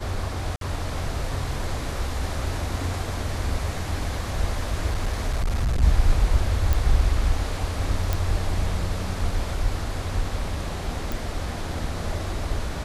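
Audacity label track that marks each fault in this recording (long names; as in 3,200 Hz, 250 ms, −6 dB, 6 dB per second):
0.560000	0.610000	drop-out 52 ms
4.860000	5.830000	clipping −19.5 dBFS
6.730000	6.730000	click
8.130000	8.130000	click
11.120000	11.120000	click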